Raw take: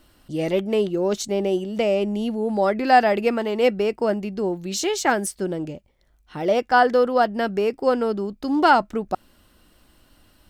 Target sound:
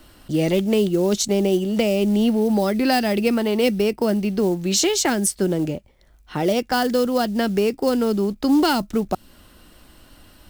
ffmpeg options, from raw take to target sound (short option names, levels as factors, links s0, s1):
-filter_complex "[0:a]acrusher=bits=7:mode=log:mix=0:aa=0.000001,acrossover=split=300|3000[s0][s1][s2];[s1]acompressor=threshold=0.0316:ratio=6[s3];[s0][s3][s2]amix=inputs=3:normalize=0,asettb=1/sr,asplit=3[s4][s5][s6];[s4]atrim=end=2.234[s7];[s5]atrim=start=2.23:end=4.39,asetpts=PTS-STARTPTS,afade=t=in:d=0.004:c=qsin,afade=t=out:st=2.156:d=0.004:c=qsin,bandreject=f=7000:w=7.9[s8];[s6]atrim=start=4.386[s9];[s7][s8]acrossfade=d=0.004:c1=hsin:c2=qsin[s10];[s10][s9]acrossfade=d=0.004:c1=qsin:c2=hsin,volume=2.37"